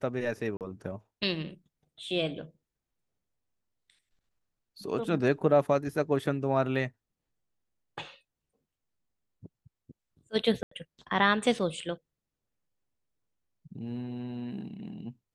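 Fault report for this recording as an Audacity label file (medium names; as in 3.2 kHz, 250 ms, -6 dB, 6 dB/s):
0.570000	0.610000	dropout 38 ms
10.630000	10.710000	dropout 84 ms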